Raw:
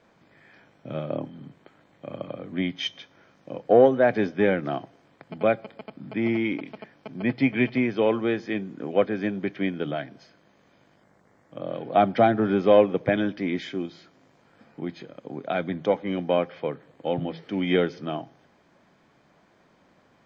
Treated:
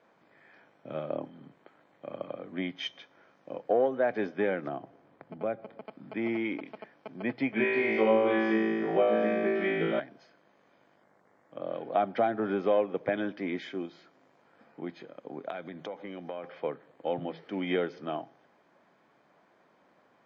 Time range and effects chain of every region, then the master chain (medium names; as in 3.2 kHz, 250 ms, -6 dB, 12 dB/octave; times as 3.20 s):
4.68–5.85 s: tilt EQ -2.5 dB/octave + compression 1.5:1, threshold -38 dBFS
7.54–10.00 s: distance through air 66 m + comb 5.2 ms, depth 70% + flutter echo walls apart 3.1 m, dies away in 1.4 s
15.50–16.44 s: compression 8:1, threshold -31 dBFS + treble shelf 5 kHz +8.5 dB
whole clip: high-pass 560 Hz 6 dB/octave; treble shelf 2.4 kHz -12 dB; compression 2:1, threshold -27 dBFS; trim +1 dB